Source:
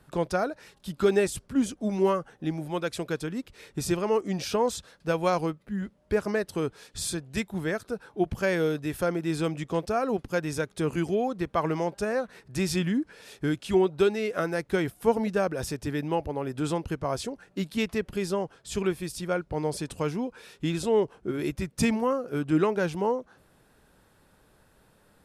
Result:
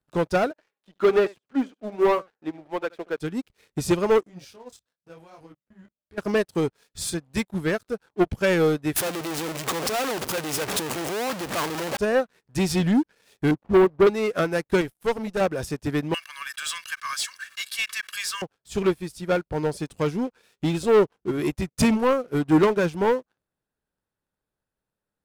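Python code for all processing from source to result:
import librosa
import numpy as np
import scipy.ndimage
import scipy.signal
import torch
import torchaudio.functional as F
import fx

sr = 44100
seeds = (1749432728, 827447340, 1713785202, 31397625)

y = fx.chain(x, sr, fx.bandpass_edges(low_hz=350.0, high_hz=2300.0),
    fx.echo_single(ms=75, db=-13.0), at=(0.51, 3.18))
y = fx.chain(y, sr, fx.level_steps(step_db=18),
    fx.detune_double(cents=31), at=(4.23, 6.18))
y = fx.chain(y, sr, fx.clip_1bit(),
    fx.highpass(hz=340.0, slope=6), at=(8.96, 11.97))
y = fx.chain(y, sr, fx.cvsd(bps=16000),
    fx.lowpass(hz=1100.0, slope=24), at=(13.51, 14.07))
y = fx.chain(y, sr, fx.high_shelf(hz=4700.0, db=5.0),
    fx.tube_stage(drive_db=24.0, bias=0.75), at=(14.81, 15.41))
y = fx.chain(y, sr, fx.steep_highpass(hz=1300.0, slope=48),
    fx.comb(ms=1.8, depth=0.82),
    fx.env_flatten(amount_pct=70), at=(16.14, 18.42))
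y = fx.leveller(y, sr, passes=3)
y = fx.upward_expand(y, sr, threshold_db=-29.0, expansion=2.5)
y = y * 10.0 ** (2.0 / 20.0)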